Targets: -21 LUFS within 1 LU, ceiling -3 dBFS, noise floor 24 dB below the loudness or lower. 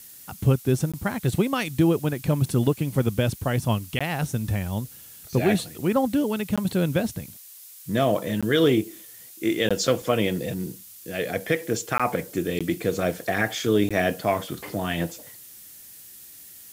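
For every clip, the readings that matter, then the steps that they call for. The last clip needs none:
dropouts 8; longest dropout 16 ms; noise floor -46 dBFS; noise floor target -49 dBFS; loudness -25.0 LUFS; peak level -8.5 dBFS; loudness target -21.0 LUFS
-> interpolate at 0.92/3.99/6.56/8.41/9.69/11.98/12.59/13.89 s, 16 ms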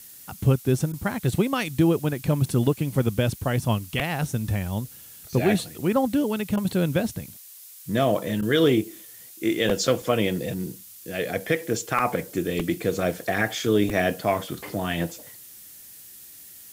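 dropouts 0; noise floor -46 dBFS; noise floor target -49 dBFS
-> noise reduction 6 dB, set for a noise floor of -46 dBFS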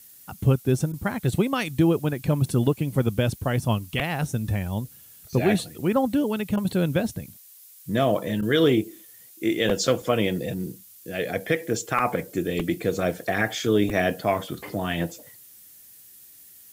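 noise floor -50 dBFS; loudness -25.0 LUFS; peak level -9.0 dBFS; loudness target -21.0 LUFS
-> trim +4 dB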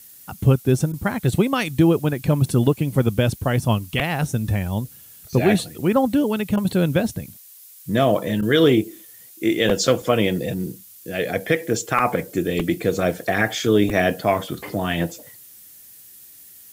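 loudness -21.0 LUFS; peak level -5.0 dBFS; noise floor -46 dBFS

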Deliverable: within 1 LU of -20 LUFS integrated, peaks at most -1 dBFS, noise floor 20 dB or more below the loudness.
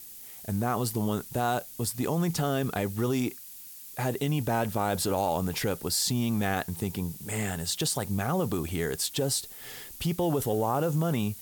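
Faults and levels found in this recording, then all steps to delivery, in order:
noise floor -45 dBFS; noise floor target -49 dBFS; loudness -29.0 LUFS; peak level -15.5 dBFS; loudness target -20.0 LUFS
-> noise print and reduce 6 dB; trim +9 dB

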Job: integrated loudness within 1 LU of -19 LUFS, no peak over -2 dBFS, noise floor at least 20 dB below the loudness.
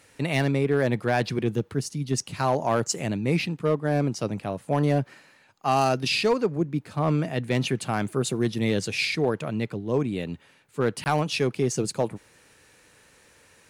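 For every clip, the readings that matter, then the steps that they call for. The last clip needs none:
clipped samples 0.4%; clipping level -14.5 dBFS; dropouts 1; longest dropout 19 ms; loudness -26.0 LUFS; peak level -14.5 dBFS; loudness target -19.0 LUFS
-> clip repair -14.5 dBFS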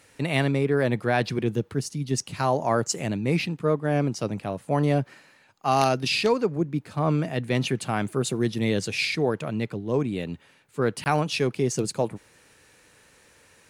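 clipped samples 0.0%; dropouts 1; longest dropout 19 ms
-> interpolate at 11.04 s, 19 ms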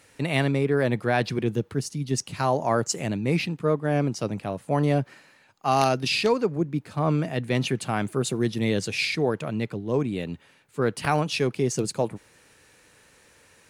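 dropouts 0; loudness -25.5 LUFS; peak level -5.5 dBFS; loudness target -19.0 LUFS
-> trim +6.5 dB; peak limiter -2 dBFS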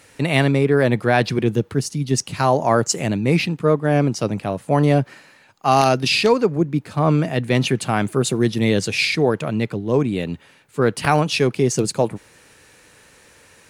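loudness -19.0 LUFS; peak level -2.0 dBFS; noise floor -52 dBFS

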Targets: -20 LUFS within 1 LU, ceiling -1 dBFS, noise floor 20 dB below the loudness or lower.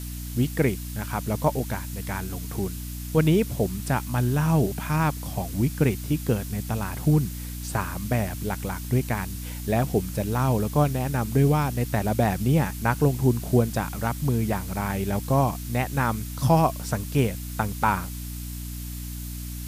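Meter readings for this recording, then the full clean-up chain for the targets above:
hum 60 Hz; highest harmonic 300 Hz; hum level -32 dBFS; noise floor -34 dBFS; noise floor target -46 dBFS; loudness -25.5 LUFS; peak level -8.0 dBFS; loudness target -20.0 LUFS
-> hum notches 60/120/180/240/300 Hz; noise print and reduce 12 dB; trim +5.5 dB

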